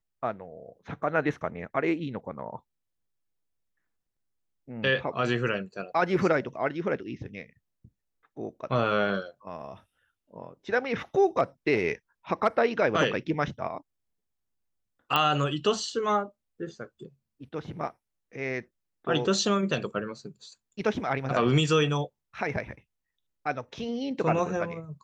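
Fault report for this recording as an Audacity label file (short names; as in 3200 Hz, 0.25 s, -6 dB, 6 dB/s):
15.160000	15.160000	pop -11 dBFS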